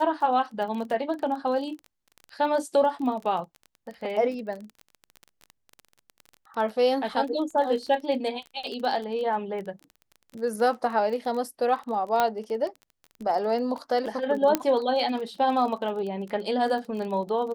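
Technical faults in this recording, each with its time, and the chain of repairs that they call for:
crackle 22 per s -33 dBFS
12.20 s: pop -9 dBFS
14.55 s: pop -7 dBFS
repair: de-click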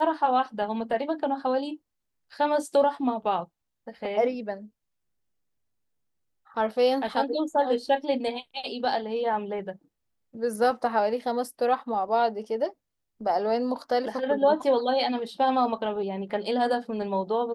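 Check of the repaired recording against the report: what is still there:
nothing left

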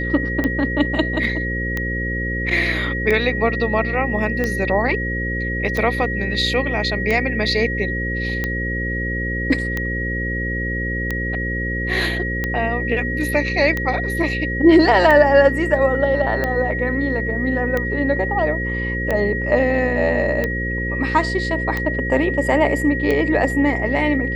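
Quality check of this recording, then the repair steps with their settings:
buzz 60 Hz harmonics 9 -25 dBFS
tick 45 rpm -9 dBFS
whine 1.9 kHz -24 dBFS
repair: de-click; de-hum 60 Hz, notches 9; band-stop 1.9 kHz, Q 30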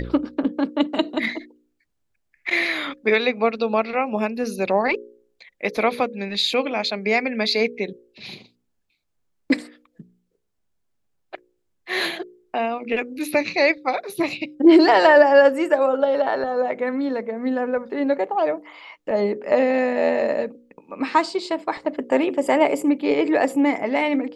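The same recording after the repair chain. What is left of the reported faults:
nothing left

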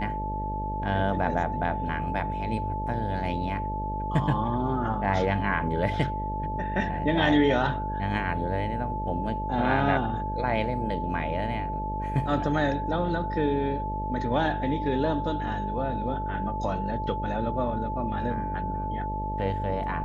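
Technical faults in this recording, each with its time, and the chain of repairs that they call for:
buzz 50 Hz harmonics 13 -33 dBFS
whine 870 Hz -31 dBFS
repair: de-hum 50 Hz, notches 13; band-stop 870 Hz, Q 30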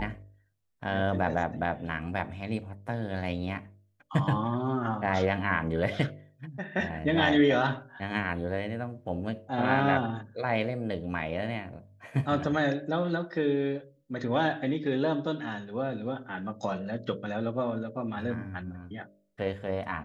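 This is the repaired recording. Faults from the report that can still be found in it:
nothing left

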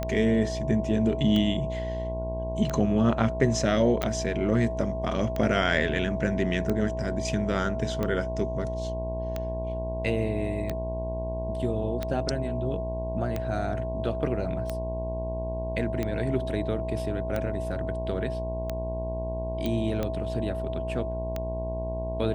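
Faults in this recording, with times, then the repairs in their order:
buzz 60 Hz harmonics 18 -33 dBFS
tick 45 rpm -16 dBFS
whine 650 Hz -32 dBFS
4.02 s: pop -14 dBFS
19.66 s: pop -17 dBFS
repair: de-click; de-hum 60 Hz, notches 18; band-stop 650 Hz, Q 30

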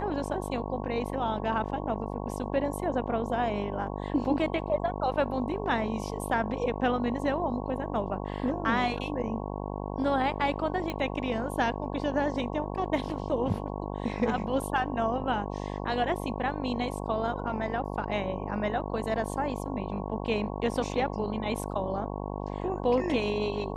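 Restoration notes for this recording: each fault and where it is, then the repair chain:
buzz 50 Hz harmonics 22 -35 dBFS
10.90 s: pop -19 dBFS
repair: de-click; de-hum 50 Hz, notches 22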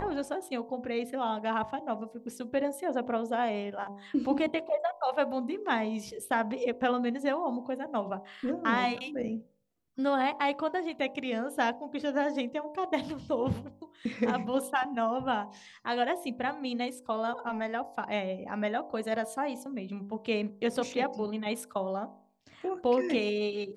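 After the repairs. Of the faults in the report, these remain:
nothing left

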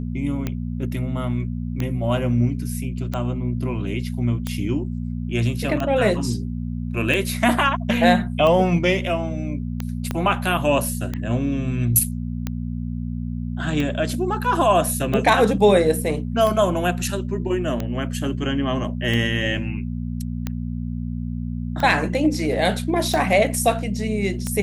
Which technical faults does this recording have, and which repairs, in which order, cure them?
hum 60 Hz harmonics 4 -27 dBFS
tick 45 rpm -12 dBFS
10.11 s: pop -11 dBFS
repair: de-click; de-hum 60 Hz, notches 4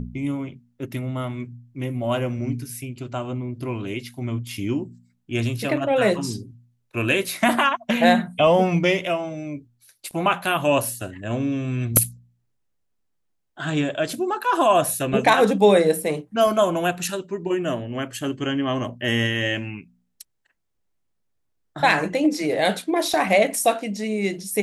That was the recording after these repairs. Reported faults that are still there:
10.11 s: pop

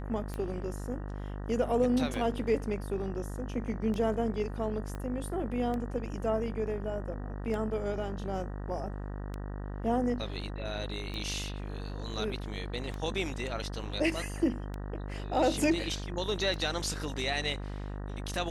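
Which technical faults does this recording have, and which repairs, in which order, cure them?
buzz 50 Hz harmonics 38 -38 dBFS
tick 33 1/3 rpm -24 dBFS
4.95 s: pop -26 dBFS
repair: de-click; de-hum 50 Hz, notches 38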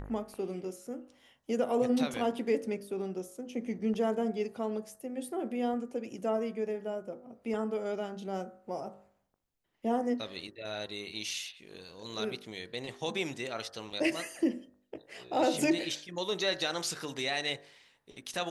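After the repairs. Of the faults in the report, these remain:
4.95 s: pop

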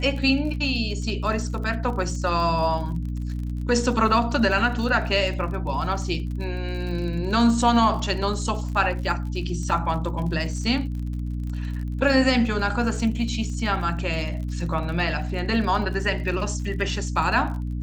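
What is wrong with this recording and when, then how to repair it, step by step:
crackle 44 per s -33 dBFS
hum 60 Hz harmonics 5 -28 dBFS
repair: de-click; de-hum 60 Hz, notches 5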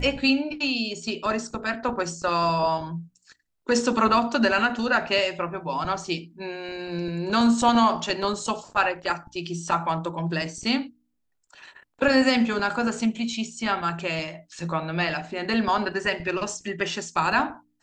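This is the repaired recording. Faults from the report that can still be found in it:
nothing left

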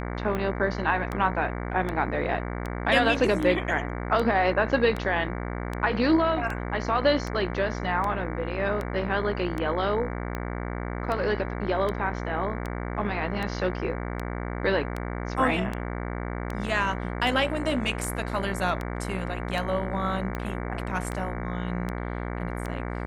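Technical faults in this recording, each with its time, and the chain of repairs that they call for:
buzz 60 Hz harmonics 38 -32 dBFS
tick 78 rpm -18 dBFS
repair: de-click; de-hum 60 Hz, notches 38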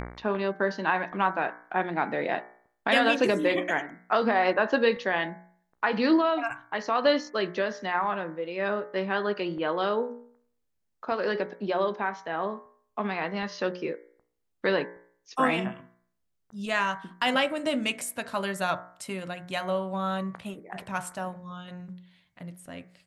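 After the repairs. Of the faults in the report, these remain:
nothing left

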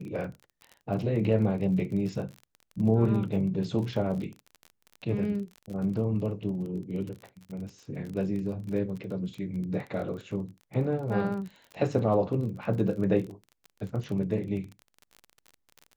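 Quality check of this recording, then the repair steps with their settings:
crackle 30 per s -36 dBFS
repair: de-click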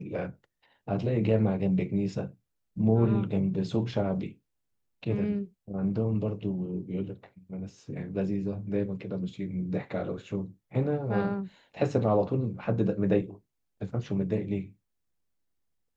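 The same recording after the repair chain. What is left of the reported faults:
nothing left

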